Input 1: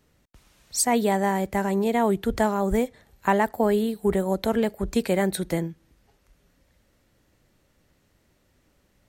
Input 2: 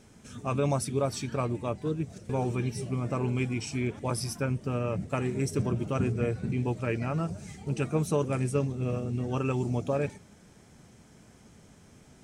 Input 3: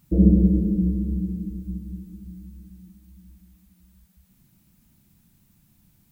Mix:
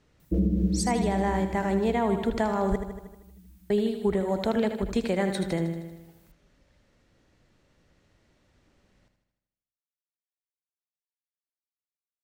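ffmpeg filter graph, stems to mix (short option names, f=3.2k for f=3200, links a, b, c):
-filter_complex "[0:a]lowpass=6.3k,volume=-0.5dB,asplit=3[a][b][c];[a]atrim=end=2.76,asetpts=PTS-STARTPTS,afade=t=out:st=2.756:d=0.004:c=hsin[d];[b]atrim=start=2.76:end=3.7,asetpts=PTS-STARTPTS,volume=0[e];[c]atrim=start=3.7,asetpts=PTS-STARTPTS,afade=t=in:d=0.004:c=hsin[f];[d][e][f]concat=n=3:v=0:a=1,asplit=2[g][h];[h]volume=-9dB[i];[2:a]lowshelf=f=380:g=-3.5,adelay=200,volume=-0.5dB[j];[i]aecho=0:1:78|156|234|312|390|468|546|624|702:1|0.59|0.348|0.205|0.121|0.0715|0.0422|0.0249|0.0147[k];[g][j][k]amix=inputs=3:normalize=0,alimiter=limit=-15.5dB:level=0:latency=1:release=297"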